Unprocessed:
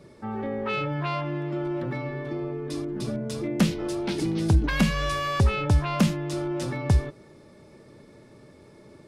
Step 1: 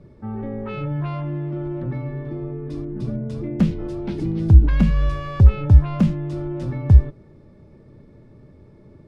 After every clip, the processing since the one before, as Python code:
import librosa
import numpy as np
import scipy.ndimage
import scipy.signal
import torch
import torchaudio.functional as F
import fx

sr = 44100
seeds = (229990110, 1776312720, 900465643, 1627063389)

y = fx.riaa(x, sr, side='playback')
y = y * librosa.db_to_amplitude(-4.5)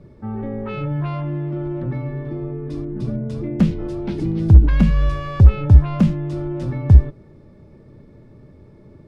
y = np.clip(x, -10.0 ** (-3.0 / 20.0), 10.0 ** (-3.0 / 20.0))
y = y * librosa.db_to_amplitude(2.0)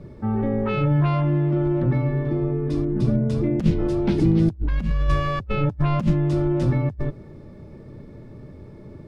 y = fx.over_compress(x, sr, threshold_db=-18.0, ratio=-0.5)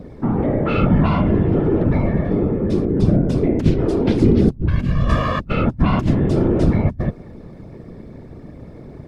y = fx.whisperise(x, sr, seeds[0])
y = y * librosa.db_to_amplitude(4.5)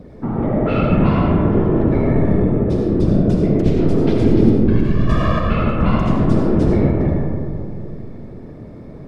y = fx.rev_freeverb(x, sr, rt60_s=2.6, hf_ratio=0.3, predelay_ms=40, drr_db=-1.5)
y = y * librosa.db_to_amplitude(-3.0)